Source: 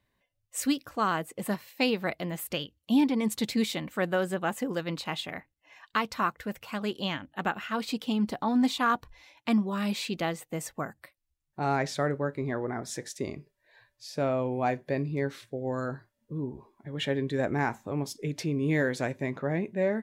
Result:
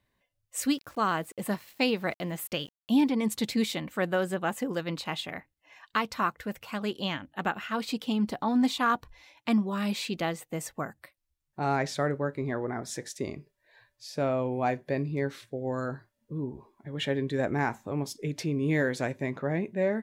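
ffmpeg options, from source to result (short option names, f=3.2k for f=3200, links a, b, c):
-filter_complex "[0:a]asettb=1/sr,asplit=3[a][b][c];[a]atrim=end=0.764[d];[b]atrim=start=0.76:end=3.09,asetpts=PTS-STARTPTS,afade=t=in:d=0.004:c=qsin,afade=t=out:st=2.326:d=0.004:c=qsin,aeval=exprs='val(0)*gte(abs(val(0)),0.00266)':c=same[e];[c]atrim=start=3.086[f];[d][e]acrossfade=d=0.004:c1=hsin:c2=qsin[g];[g][f]acrossfade=d=0.004:c1=qsin:c2=hsin"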